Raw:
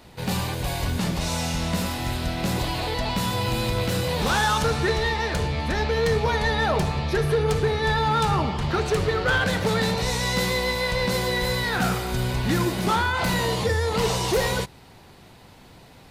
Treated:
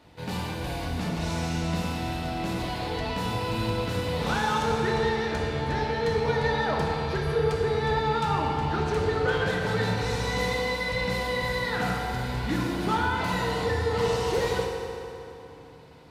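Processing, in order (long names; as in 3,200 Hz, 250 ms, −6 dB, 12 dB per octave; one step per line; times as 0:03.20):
high-pass filter 50 Hz
high-shelf EQ 6,600 Hz −10 dB
feedback delay network reverb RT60 3.1 s, high-frequency decay 0.7×, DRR 0 dB
level −6.5 dB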